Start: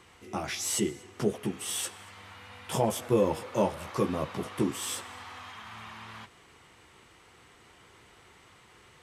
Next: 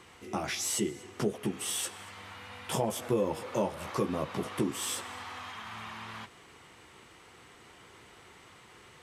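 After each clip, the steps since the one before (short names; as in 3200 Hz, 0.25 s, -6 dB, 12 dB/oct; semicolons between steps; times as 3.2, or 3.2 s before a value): low shelf 130 Hz -10.5 dB; compressor 2:1, threshold -34 dBFS, peak gain reduction 7.5 dB; low shelf 280 Hz +5.5 dB; gain +2 dB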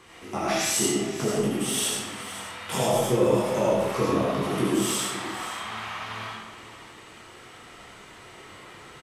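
chorus voices 4, 0.43 Hz, delay 26 ms, depth 4.8 ms; echo 0.521 s -14 dB; digital reverb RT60 0.92 s, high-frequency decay 0.85×, pre-delay 35 ms, DRR -4 dB; gain +6 dB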